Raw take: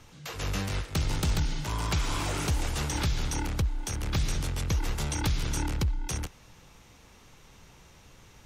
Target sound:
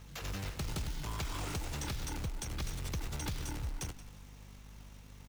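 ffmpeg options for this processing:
ffmpeg -i in.wav -filter_complex "[0:a]aeval=exprs='val(0)+0.00447*(sin(2*PI*50*n/s)+sin(2*PI*2*50*n/s)/2+sin(2*PI*3*50*n/s)/3+sin(2*PI*4*50*n/s)/4+sin(2*PI*5*50*n/s)/5)':channel_layout=same,acrusher=bits=3:mode=log:mix=0:aa=0.000001,acompressor=threshold=-32dB:ratio=2.5,asplit=2[link_01][link_02];[link_02]asplit=3[link_03][link_04][link_05];[link_03]adelay=289,afreqshift=-32,volume=-15.5dB[link_06];[link_04]adelay=578,afreqshift=-64,volume=-23.7dB[link_07];[link_05]adelay=867,afreqshift=-96,volume=-31.9dB[link_08];[link_06][link_07][link_08]amix=inputs=3:normalize=0[link_09];[link_01][link_09]amix=inputs=2:normalize=0,atempo=1.6,volume=-4.5dB" out.wav

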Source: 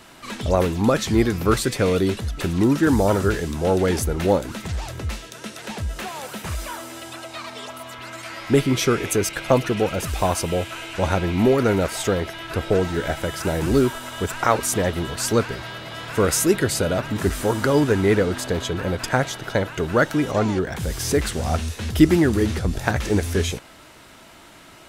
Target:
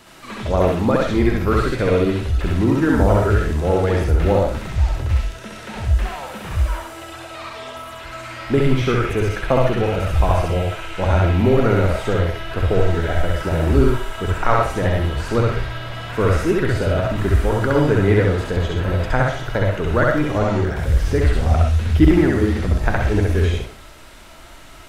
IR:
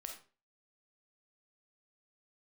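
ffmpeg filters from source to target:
-filter_complex "[0:a]acrossover=split=3100[link_01][link_02];[link_02]acompressor=threshold=-46dB:ratio=4:attack=1:release=60[link_03];[link_01][link_03]amix=inputs=2:normalize=0,asplit=2[link_04][link_05];[link_05]asubboost=boost=10.5:cutoff=68[link_06];[1:a]atrim=start_sample=2205,adelay=66[link_07];[link_06][link_07]afir=irnorm=-1:irlink=0,volume=5dB[link_08];[link_04][link_08]amix=inputs=2:normalize=0,volume=-1dB"

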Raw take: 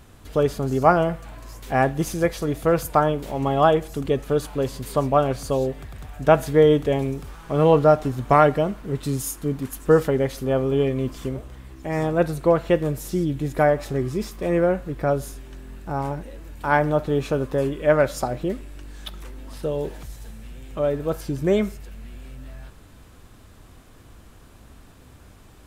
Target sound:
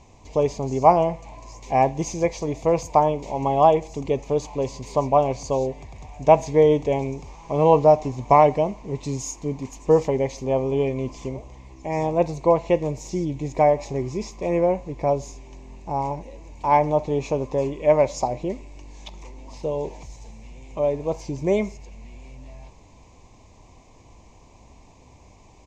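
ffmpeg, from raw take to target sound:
ffmpeg -i in.wav -af "firequalizer=gain_entry='entry(270,0);entry(1000,9);entry(1400,-21);entry(2200,6);entry(3200,-4);entry(6600,8);entry(10000,-24)':delay=0.05:min_phase=1,volume=-3dB" out.wav

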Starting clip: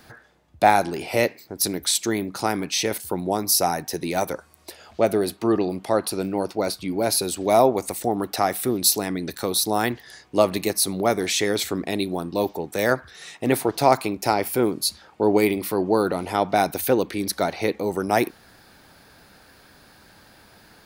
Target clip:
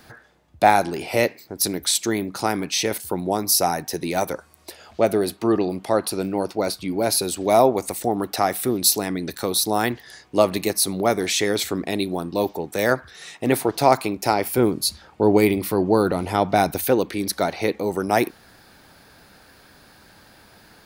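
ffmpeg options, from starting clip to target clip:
ffmpeg -i in.wav -filter_complex "[0:a]asettb=1/sr,asplit=3[link_01][link_02][link_03];[link_01]atrim=end=14.574[link_04];[link_02]atrim=start=14.57:end=16.79,asetpts=PTS-STARTPTS,afade=type=in:duration=0.004:curve=qsin,afade=type=out:start_time=2.216:duration=0.004:curve=qsin,lowshelf=frequency=130:gain=10.5[link_05];[link_03]atrim=start=16.786[link_06];[link_04][link_05]acrossfade=duration=0.004:curve1=hsin:curve2=qsin[link_07];[link_07][link_06]acrossfade=duration=0.004:curve1=qsin:curve2=hsin,volume=1dB" out.wav

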